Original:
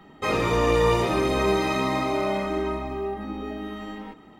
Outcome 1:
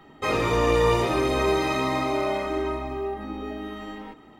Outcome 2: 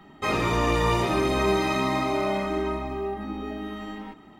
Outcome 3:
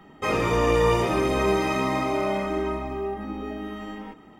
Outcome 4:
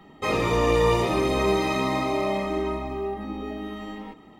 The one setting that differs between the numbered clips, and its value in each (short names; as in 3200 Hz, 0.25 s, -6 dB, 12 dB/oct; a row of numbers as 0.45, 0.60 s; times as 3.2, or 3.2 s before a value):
notch, frequency: 190, 490, 4000, 1500 Hz